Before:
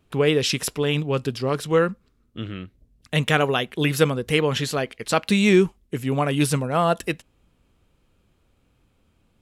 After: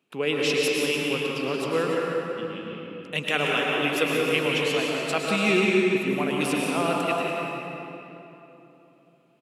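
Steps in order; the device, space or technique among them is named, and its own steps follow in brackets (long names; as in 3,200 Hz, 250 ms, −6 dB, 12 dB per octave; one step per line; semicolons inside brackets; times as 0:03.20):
stadium PA (high-pass filter 180 Hz 24 dB per octave; parametric band 2,600 Hz +8 dB 0.38 octaves; loudspeakers that aren't time-aligned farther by 62 metres −9 dB, 99 metres −12 dB; convolution reverb RT60 3.2 s, pre-delay 101 ms, DRR −2 dB)
level −7.5 dB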